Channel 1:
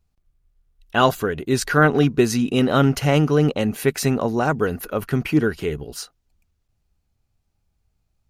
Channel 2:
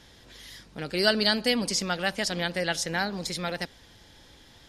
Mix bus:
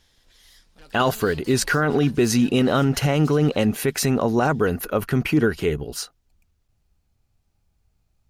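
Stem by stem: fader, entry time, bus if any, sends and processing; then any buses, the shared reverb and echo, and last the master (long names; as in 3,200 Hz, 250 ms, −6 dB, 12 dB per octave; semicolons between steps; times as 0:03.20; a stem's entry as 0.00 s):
+2.5 dB, 0.00 s, no send, no processing
−8.0 dB, 0.00 s, no send, spectral tilt +2 dB per octave; tube saturation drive 33 dB, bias 0.65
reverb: not used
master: brickwall limiter −9.5 dBFS, peak gain reduction 10 dB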